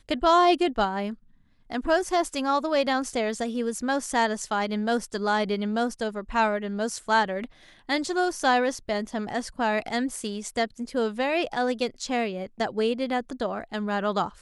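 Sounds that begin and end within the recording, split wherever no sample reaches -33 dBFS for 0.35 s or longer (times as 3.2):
1.72–7.45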